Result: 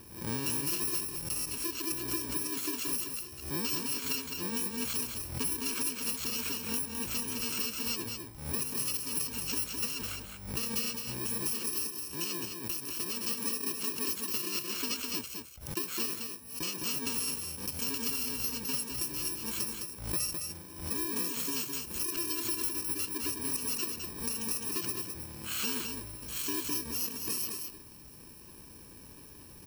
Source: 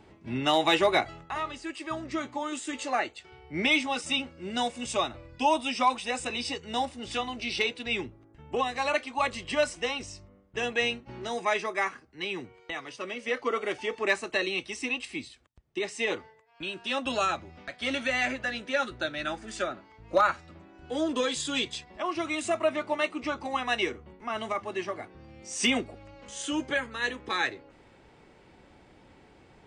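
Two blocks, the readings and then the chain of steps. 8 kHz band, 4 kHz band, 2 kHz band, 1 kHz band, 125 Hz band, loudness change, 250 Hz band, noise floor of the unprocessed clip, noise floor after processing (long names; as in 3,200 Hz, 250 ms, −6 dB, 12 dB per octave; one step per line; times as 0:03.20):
+8.0 dB, −4.0 dB, −12.0 dB, −15.5 dB, +1.5 dB, −2.5 dB, −5.5 dB, −58 dBFS, −51 dBFS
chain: samples in bit-reversed order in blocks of 64 samples
hard clipping −19 dBFS, distortion −18 dB
downward compressor, threshold −36 dBFS, peak gain reduction 14 dB
on a send: single-tap delay 210 ms −5.5 dB
on the sum: background raised ahead of every attack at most 90 dB per second
level +4 dB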